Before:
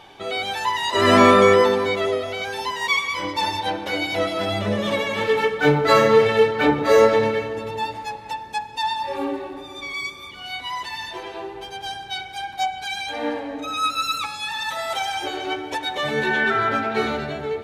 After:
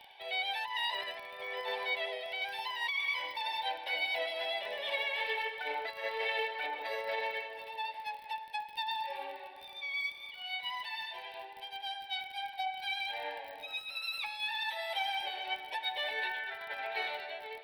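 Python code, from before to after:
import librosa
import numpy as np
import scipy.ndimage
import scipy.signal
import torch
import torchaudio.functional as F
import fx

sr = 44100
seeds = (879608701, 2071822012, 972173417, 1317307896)

y = scipy.signal.sosfilt(scipy.signal.butter(4, 800.0, 'highpass', fs=sr, output='sos'), x)
y = fx.high_shelf(y, sr, hz=2500.0, db=-11.0)
y = fx.over_compress(y, sr, threshold_db=-28.0, ratio=-1.0)
y = fx.dmg_crackle(y, sr, seeds[0], per_s=42.0, level_db=-35.0)
y = fx.fixed_phaser(y, sr, hz=3000.0, stages=4)
y = F.gain(torch.from_numpy(y), -1.5).numpy()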